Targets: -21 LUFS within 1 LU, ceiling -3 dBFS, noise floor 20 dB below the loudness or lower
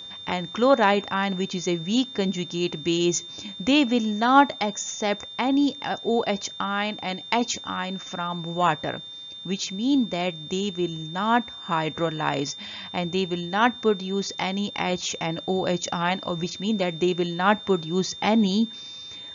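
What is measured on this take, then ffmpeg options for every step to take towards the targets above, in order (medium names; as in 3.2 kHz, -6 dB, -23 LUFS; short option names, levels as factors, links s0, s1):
steady tone 3.6 kHz; tone level -37 dBFS; loudness -25.0 LUFS; peak level -4.0 dBFS; loudness target -21.0 LUFS
-> -af "bandreject=f=3600:w=30"
-af "volume=1.58,alimiter=limit=0.708:level=0:latency=1"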